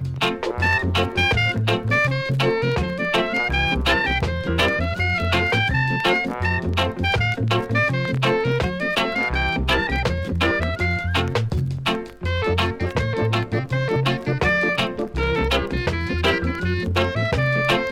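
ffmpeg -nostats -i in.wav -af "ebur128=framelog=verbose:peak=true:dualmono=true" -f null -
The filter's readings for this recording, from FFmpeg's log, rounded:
Integrated loudness:
  I:         -17.9 LUFS
  Threshold: -27.9 LUFS
Loudness range:
  LRA:         2.4 LU
  Threshold: -37.9 LUFS
  LRA low:   -19.3 LUFS
  LRA high:  -16.9 LUFS
True peak:
  Peak:       -5.8 dBFS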